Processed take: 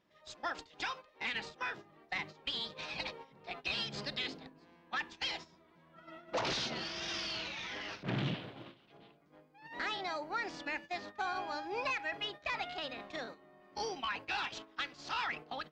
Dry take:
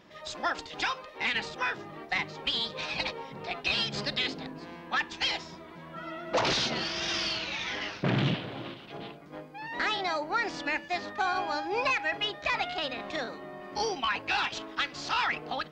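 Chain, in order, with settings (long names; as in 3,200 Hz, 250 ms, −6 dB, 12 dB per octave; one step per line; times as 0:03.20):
noise gate −38 dBFS, range −10 dB
0:07.19–0:08.08: transient designer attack −11 dB, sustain +9 dB
level −8 dB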